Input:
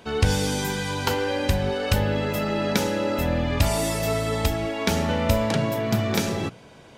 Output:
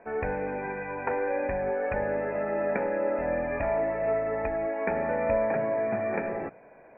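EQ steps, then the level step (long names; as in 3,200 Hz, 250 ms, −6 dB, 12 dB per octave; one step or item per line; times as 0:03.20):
Chebyshev low-pass with heavy ripple 2,500 Hz, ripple 9 dB
high-frequency loss of the air 350 metres
parametric band 93 Hz −14.5 dB 2.1 octaves
+3.5 dB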